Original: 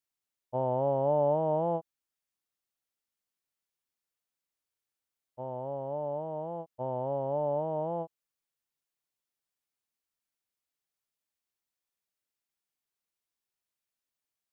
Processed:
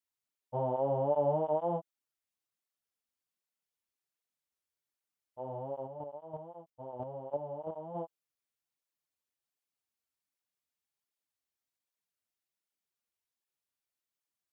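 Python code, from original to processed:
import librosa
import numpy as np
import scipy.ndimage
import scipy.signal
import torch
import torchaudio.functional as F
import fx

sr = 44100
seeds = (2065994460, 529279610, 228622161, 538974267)

y = fx.chopper(x, sr, hz=3.0, depth_pct=60, duty_pct=10, at=(5.86, 7.94), fade=0.02)
y = fx.flanger_cancel(y, sr, hz=1.3, depth_ms=7.6)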